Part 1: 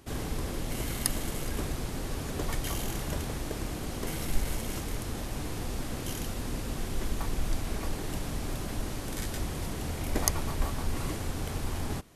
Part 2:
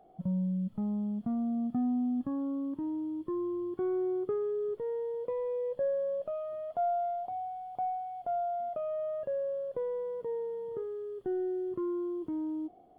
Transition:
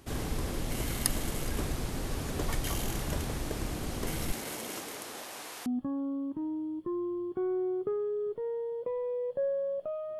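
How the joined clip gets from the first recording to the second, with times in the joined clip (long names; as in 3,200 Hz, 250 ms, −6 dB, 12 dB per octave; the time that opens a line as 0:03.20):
part 1
0:04.31–0:05.66: high-pass filter 210 Hz → 830 Hz
0:05.66: continue with part 2 from 0:02.08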